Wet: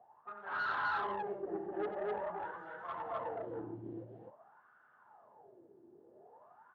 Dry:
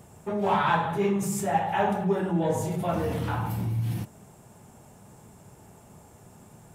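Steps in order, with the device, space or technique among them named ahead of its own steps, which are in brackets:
wah-wah guitar rig (LFO wah 0.48 Hz 330–1,500 Hz, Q 14; tube saturation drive 40 dB, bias 0.35; loudspeaker in its box 85–3,600 Hz, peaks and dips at 180 Hz −5 dB, 1,700 Hz +5 dB, 2,400 Hz −7 dB)
loudspeakers that aren't time-aligned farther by 31 metres −9 dB, 87 metres 0 dB
level +5.5 dB

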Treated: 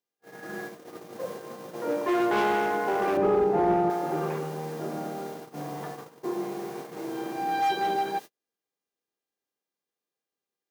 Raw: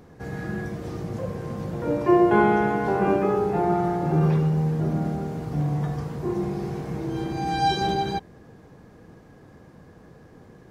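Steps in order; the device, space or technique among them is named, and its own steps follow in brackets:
aircraft radio (band-pass filter 340–2,600 Hz; hard clipping −21 dBFS, distortion −10 dB; hum with harmonics 400 Hz, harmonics 17, −56 dBFS −1 dB per octave; white noise bed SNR 23 dB; noise gate −36 dBFS, range −42 dB)
high-pass filter 170 Hz 6 dB per octave
0:03.17–0:03.90: spectral tilt −3.5 dB per octave

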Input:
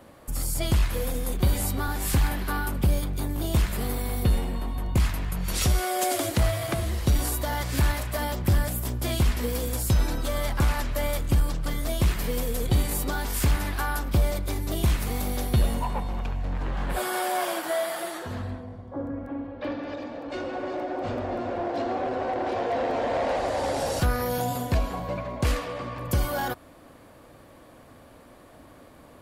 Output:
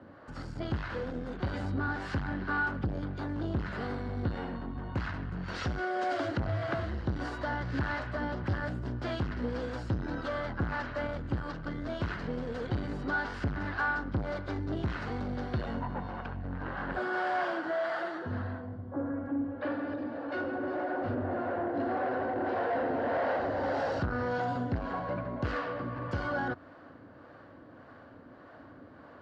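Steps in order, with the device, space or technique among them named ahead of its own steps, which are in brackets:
0:21.15–0:21.80: low-pass filter 3,200 Hz 6 dB per octave
guitar amplifier with harmonic tremolo (two-band tremolo in antiphase 1.7 Hz, depth 50%, crossover 440 Hz; soft clipping −25.5 dBFS, distortion −10 dB; loudspeaker in its box 87–3,900 Hz, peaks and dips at 96 Hz +4 dB, 280 Hz +4 dB, 1,500 Hz +8 dB, 2,400 Hz −8 dB, 3,500 Hz −8 dB)

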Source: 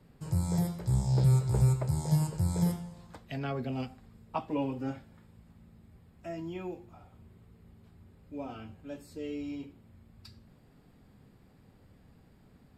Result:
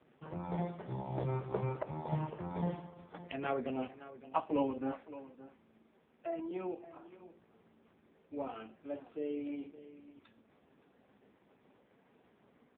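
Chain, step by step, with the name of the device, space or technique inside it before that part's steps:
0:04.92–0:06.51: high-pass filter 190 Hz 24 dB per octave
satellite phone (band-pass filter 340–3,200 Hz; single-tap delay 567 ms −15.5 dB; level +3.5 dB; AMR narrowband 4.75 kbit/s 8,000 Hz)

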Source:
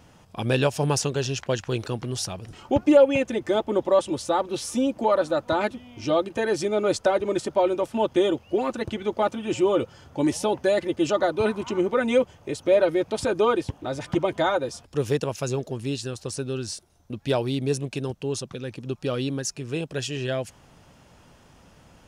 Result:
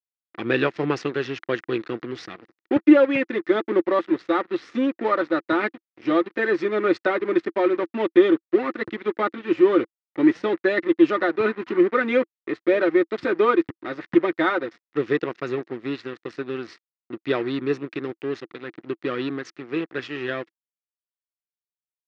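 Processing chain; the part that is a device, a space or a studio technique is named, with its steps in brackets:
blown loudspeaker (dead-zone distortion −36 dBFS; loudspeaker in its box 220–3,700 Hz, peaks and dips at 330 Hz +9 dB, 610 Hz −7 dB, 870 Hz −7 dB, 1,300 Hz +5 dB, 1,900 Hz +9 dB, 3,100 Hz −5 dB)
level +2.5 dB

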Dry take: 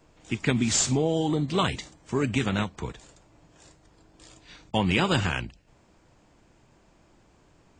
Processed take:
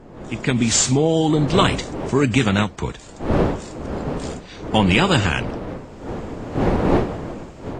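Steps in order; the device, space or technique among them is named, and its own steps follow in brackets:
smartphone video outdoors (wind on the microphone 460 Hz −37 dBFS; automatic gain control gain up to 15 dB; AAC 64 kbit/s 32,000 Hz)

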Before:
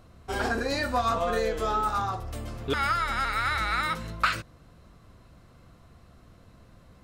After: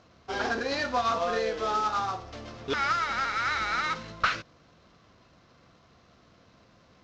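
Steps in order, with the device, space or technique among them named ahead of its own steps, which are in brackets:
early wireless headset (high-pass filter 260 Hz 6 dB per octave; variable-slope delta modulation 32 kbit/s)

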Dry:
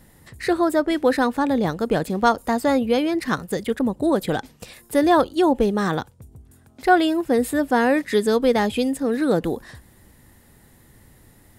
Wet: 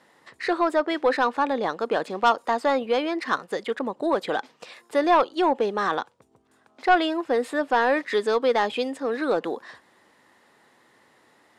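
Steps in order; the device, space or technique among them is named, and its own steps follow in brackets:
intercom (band-pass filter 430–4,800 Hz; parametric band 1,100 Hz +4.5 dB 0.58 octaves; soft clipping −10 dBFS, distortion −16 dB)

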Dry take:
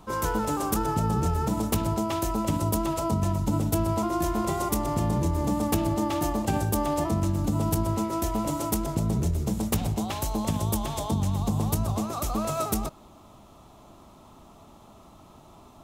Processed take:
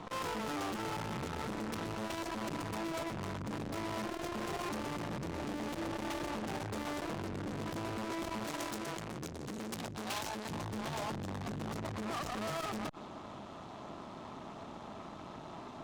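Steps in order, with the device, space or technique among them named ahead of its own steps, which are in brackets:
valve radio (band-pass filter 130–4,600 Hz; tube saturation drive 45 dB, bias 0.8; saturating transformer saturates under 270 Hz)
0:08.44–0:10.50: spectral tilt +1.5 dB per octave
level +10 dB

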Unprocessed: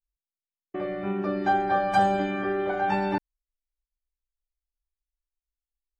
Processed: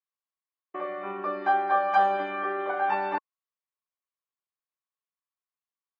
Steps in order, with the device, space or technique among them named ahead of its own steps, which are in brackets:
tin-can telephone (band-pass filter 510–2,900 Hz; hollow resonant body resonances 1,100 Hz, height 13 dB, ringing for 30 ms)

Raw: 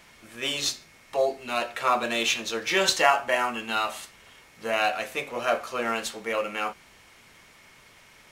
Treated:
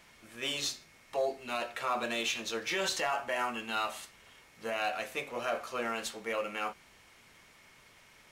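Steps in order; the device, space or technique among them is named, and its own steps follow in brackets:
soft clipper into limiter (soft clipping −9.5 dBFS, distortion −23 dB; brickwall limiter −17.5 dBFS, peak gain reduction 7.5 dB)
level −5.5 dB

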